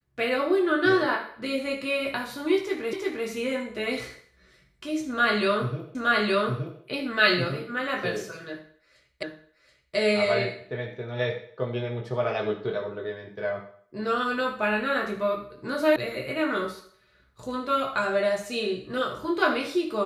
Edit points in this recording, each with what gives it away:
2.93 repeat of the last 0.35 s
5.95 repeat of the last 0.87 s
9.23 repeat of the last 0.73 s
15.96 sound cut off

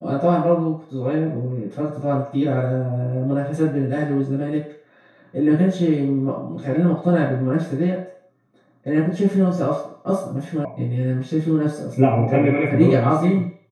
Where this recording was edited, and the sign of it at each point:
10.65 sound cut off

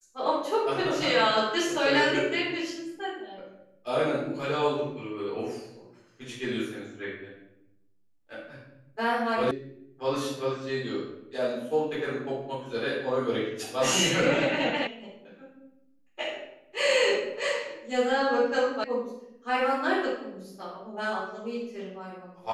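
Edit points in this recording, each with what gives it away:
9.51 sound cut off
14.87 sound cut off
18.84 sound cut off

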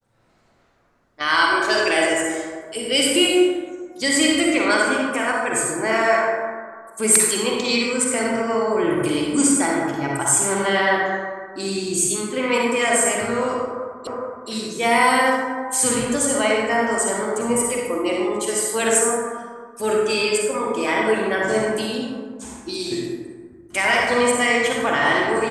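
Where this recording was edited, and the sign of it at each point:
14.07 repeat of the last 0.42 s

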